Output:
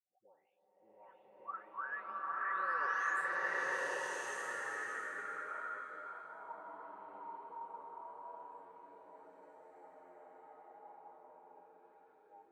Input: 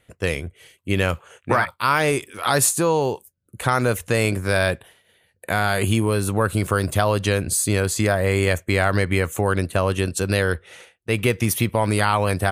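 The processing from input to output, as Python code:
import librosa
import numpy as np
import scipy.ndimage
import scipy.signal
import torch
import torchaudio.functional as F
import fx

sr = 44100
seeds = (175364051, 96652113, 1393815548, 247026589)

p1 = fx.spec_delay(x, sr, highs='late', ms=829)
p2 = fx.doppler_pass(p1, sr, speed_mps=31, closest_m=2.4, pass_at_s=3.0)
p3 = scipy.signal.sosfilt(scipy.signal.butter(2, 280.0, 'highpass', fs=sr, output='sos'), p2)
p4 = fx.high_shelf(p3, sr, hz=4900.0, db=-3.5)
p5 = fx.auto_wah(p4, sr, base_hz=750.0, top_hz=1800.0, q=19.0, full_db=-41.0, direction='up')
p6 = fx.tilt_shelf(p5, sr, db=6.0, hz=970.0)
p7 = p6 + fx.echo_single(p6, sr, ms=590, db=-9.5, dry=0)
p8 = fx.rev_bloom(p7, sr, seeds[0], attack_ms=1220, drr_db=-10.5)
y = p8 * 10.0 ** (15.0 / 20.0)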